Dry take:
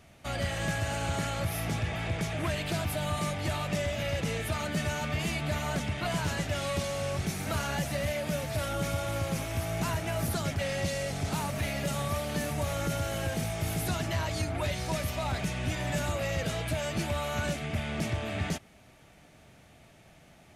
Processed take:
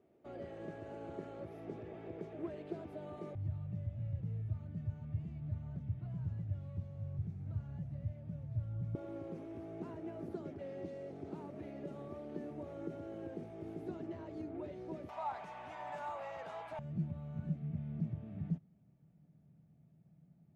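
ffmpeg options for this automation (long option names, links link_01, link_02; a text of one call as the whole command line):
ffmpeg -i in.wav -af "asetnsamples=nb_out_samples=441:pad=0,asendcmd='3.35 bandpass f 110;8.95 bandpass f 350;15.09 bandpass f 910;16.79 bandpass f 160',bandpass=frequency=380:width_type=q:width=3.9:csg=0" out.wav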